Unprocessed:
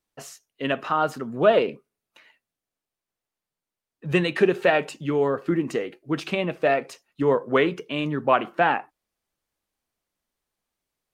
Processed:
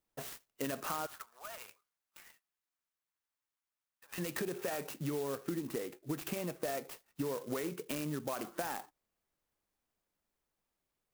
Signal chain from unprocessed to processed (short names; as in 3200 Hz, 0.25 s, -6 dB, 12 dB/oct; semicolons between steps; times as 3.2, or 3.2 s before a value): limiter -16 dBFS, peak gain reduction 9.5 dB; compressor, threshold -32 dBFS, peak gain reduction 11.5 dB; 1.06–4.18 HPF 950 Hz 24 dB/oct; clock jitter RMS 0.072 ms; gain -2.5 dB